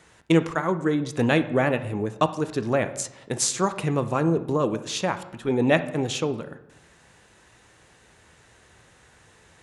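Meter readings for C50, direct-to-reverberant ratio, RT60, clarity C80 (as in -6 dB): 13.0 dB, 10.0 dB, 0.85 s, 16.0 dB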